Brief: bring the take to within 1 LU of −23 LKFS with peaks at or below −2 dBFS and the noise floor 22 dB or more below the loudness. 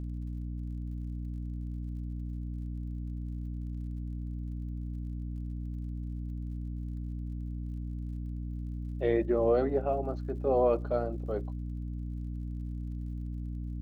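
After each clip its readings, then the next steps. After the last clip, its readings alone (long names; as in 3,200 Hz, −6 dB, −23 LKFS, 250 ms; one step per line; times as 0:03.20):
crackle rate 51 per second; mains hum 60 Hz; hum harmonics up to 300 Hz; level of the hum −34 dBFS; integrated loudness −35.0 LKFS; sample peak −15.5 dBFS; target loudness −23.0 LKFS
→ click removal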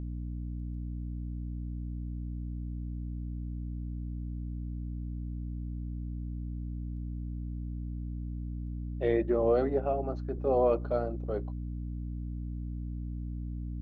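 crackle rate 0.072 per second; mains hum 60 Hz; hum harmonics up to 300 Hz; level of the hum −34 dBFS
→ mains-hum notches 60/120/180/240/300 Hz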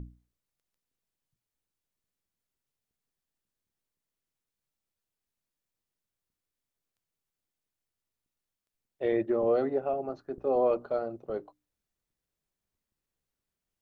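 mains hum none found; integrated loudness −30.0 LKFS; sample peak −16.5 dBFS; target loudness −23.0 LKFS
→ level +7 dB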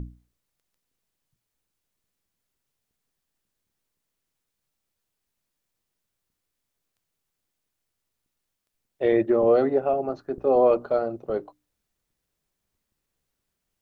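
integrated loudness −23.0 LKFS; sample peak −9.5 dBFS; background noise floor −82 dBFS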